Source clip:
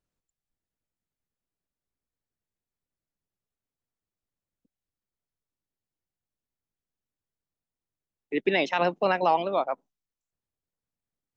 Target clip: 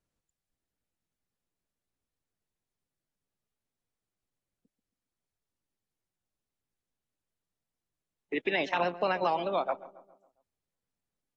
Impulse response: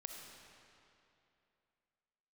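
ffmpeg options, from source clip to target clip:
-filter_complex "[0:a]acrossover=split=590|3400[a][b][c];[a]acompressor=threshold=-33dB:ratio=4[d];[b]acompressor=threshold=-28dB:ratio=4[e];[c]acompressor=threshold=-46dB:ratio=4[f];[d][e][f]amix=inputs=3:normalize=0,asplit=2[g][h];[h]adelay=137,lowpass=f=1.6k:p=1,volume=-15.5dB,asplit=2[i][j];[j]adelay=137,lowpass=f=1.6k:p=1,volume=0.5,asplit=2[k][l];[l]adelay=137,lowpass=f=1.6k:p=1,volume=0.5,asplit=2[m][n];[n]adelay=137,lowpass=f=1.6k:p=1,volume=0.5,asplit=2[o][p];[p]adelay=137,lowpass=f=1.6k:p=1,volume=0.5[q];[g][i][k][m][o][q]amix=inputs=6:normalize=0" -ar 44100 -c:a aac -b:a 32k

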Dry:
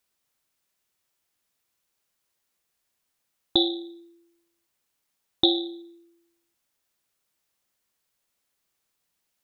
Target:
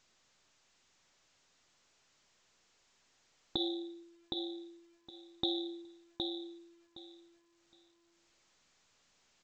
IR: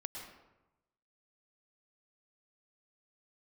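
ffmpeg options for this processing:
-filter_complex "[0:a]asettb=1/sr,asplit=3[a][b][c];[a]atrim=end=3.574[d];[b]atrim=start=3.57:end=4.03,asetpts=PTS-STARTPTS,afade=t=in:d=0.004:c=qsin,afade=t=out:st=0.456:d=0.004:c=qsin,adynamicequalizer=threshold=0.0141:dfrequency=570:dqfactor=0.87:tfrequency=570:tqfactor=0.87:attack=5:release=100:ratio=0.375:range=1.5:mode=boostabove:tftype=bell[e];[c]atrim=start=4.026[f];[d][e]acrossfade=d=0.004:c1=hsin:c2=qsin[g];[g][f]acrossfade=d=0.004:c1=qsin:c2=hsin,alimiter=limit=-13.5dB:level=0:latency=1:release=256,aecho=1:1:765|1530|2295:0.631|0.114|0.0204,volume=-6dB" -ar 16000 -c:a pcm_alaw

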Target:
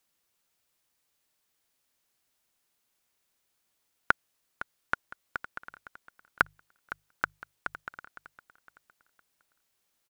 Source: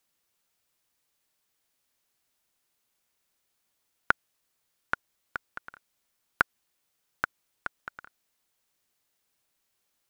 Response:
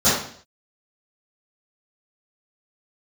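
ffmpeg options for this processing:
-filter_complex "[0:a]asettb=1/sr,asplit=3[a][b][c];[a]atrim=end=5.684[d];[b]atrim=start=5.68:end=7.8,asetpts=PTS-STARTPTS,afade=t=in:d=0.004:c=qsin,afade=t=out:st=2.116:d=0.004:c=qsin,bandreject=f=50:t=h:w=6,bandreject=f=100:t=h:w=6,bandreject=f=150:t=h:w=6[e];[c]atrim=start=7.796[f];[d][e]acrossfade=d=0.004:c1=hsin:c2=qsin[g];[g][f]acrossfade=d=0.004:c1=qsin:c2=hsin,asplit=2[h][i];[i]aecho=0:1:510|1020|1530:0.188|0.0697|0.0258[j];[h][j]amix=inputs=2:normalize=0"

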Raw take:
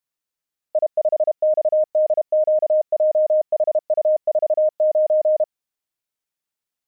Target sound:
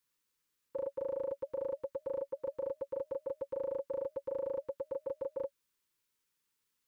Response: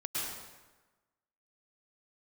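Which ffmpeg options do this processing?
-af "asuperstop=centerf=690:order=20:qfactor=2.3,volume=4dB"

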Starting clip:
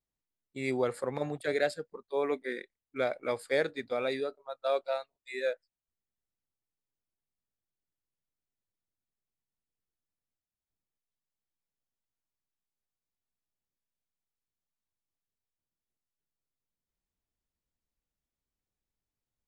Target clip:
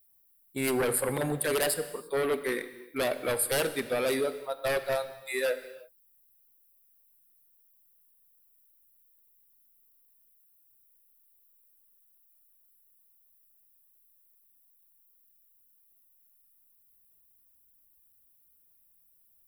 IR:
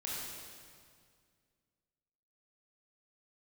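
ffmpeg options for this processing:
-filter_complex "[0:a]aeval=exprs='0.158*sin(PI/2*3.55*val(0)/0.158)':c=same,aexciter=amount=14.6:drive=6:freq=9.5k,asplit=2[a][b];[1:a]atrim=start_sample=2205,afade=t=out:st=0.4:d=0.01,atrim=end_sample=18081[c];[b][c]afir=irnorm=-1:irlink=0,volume=-11dB[d];[a][d]amix=inputs=2:normalize=0,volume=-9dB"

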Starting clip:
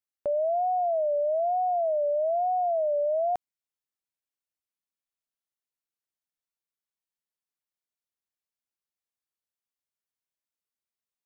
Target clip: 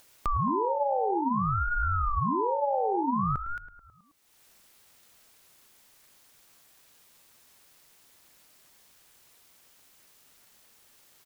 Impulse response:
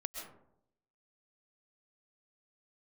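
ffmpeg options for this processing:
-filter_complex "[0:a]asplit=2[a][b];[b]aecho=0:1:221:0.316[c];[a][c]amix=inputs=2:normalize=0,acompressor=threshold=-28dB:ratio=6,asplit=2[d][e];[e]adelay=107,lowpass=f=990:p=1,volume=-12dB,asplit=2[f][g];[g]adelay=107,lowpass=f=990:p=1,volume=0.47,asplit=2[h][i];[i]adelay=107,lowpass=f=990:p=1,volume=0.47,asplit=2[j][k];[k]adelay=107,lowpass=f=990:p=1,volume=0.47,asplit=2[l][m];[m]adelay=107,lowpass=f=990:p=1,volume=0.47[n];[f][h][j][l][n]amix=inputs=5:normalize=0[o];[d][o]amix=inputs=2:normalize=0,acompressor=mode=upward:threshold=-39dB:ratio=2.5,aeval=exprs='val(0)*sin(2*PI*430*n/s+430*0.7/0.55*sin(2*PI*0.55*n/s))':c=same,volume=6dB"

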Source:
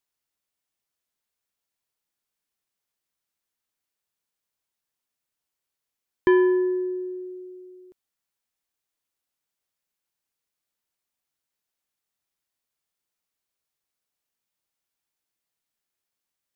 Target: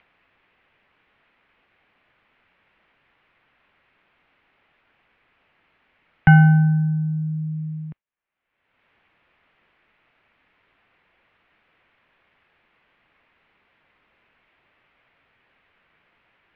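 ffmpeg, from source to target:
-af "agate=range=-33dB:threshold=-45dB:ratio=3:detection=peak,acompressor=mode=upward:threshold=-26dB:ratio=2.5,highpass=f=200:t=q:w=0.5412,highpass=f=200:t=q:w=1.307,lowpass=f=2.7k:t=q:w=0.5176,lowpass=f=2.7k:t=q:w=0.7071,lowpass=f=2.7k:t=q:w=1.932,afreqshift=-210,crystalizer=i=4:c=0,volume=6.5dB"

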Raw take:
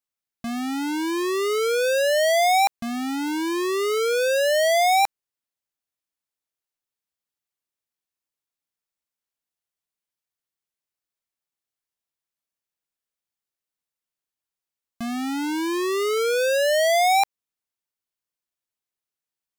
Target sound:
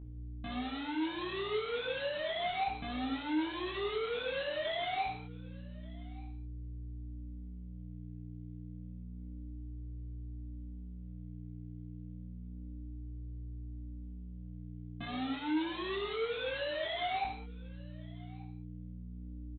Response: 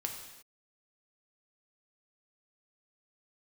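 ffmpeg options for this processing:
-filter_complex "[0:a]aecho=1:1:6.6:0.85,aeval=exprs='val(0)+0.00562*(sin(2*PI*60*n/s)+sin(2*PI*2*60*n/s)/2+sin(2*PI*3*60*n/s)/3+sin(2*PI*4*60*n/s)/4+sin(2*PI*5*60*n/s)/5)':c=same,aresample=8000,asoftclip=type=tanh:threshold=-37.5dB,aresample=44100,flanger=delay=19:depth=4.3:speed=0.3,aecho=1:1:1183:0.0668[a];[1:a]atrim=start_sample=2205,afade=t=out:st=0.25:d=0.01,atrim=end_sample=11466[b];[a][b]afir=irnorm=-1:irlink=0,volume=5dB"

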